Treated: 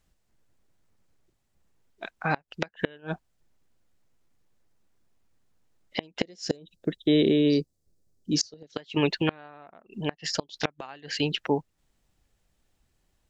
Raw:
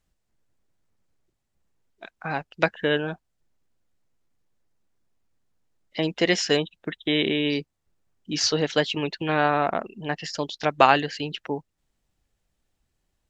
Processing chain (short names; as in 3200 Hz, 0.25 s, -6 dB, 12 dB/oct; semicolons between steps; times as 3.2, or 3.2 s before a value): 6.23–8.76 band shelf 1600 Hz -14 dB 2.4 oct; flipped gate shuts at -14 dBFS, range -30 dB; gain +4 dB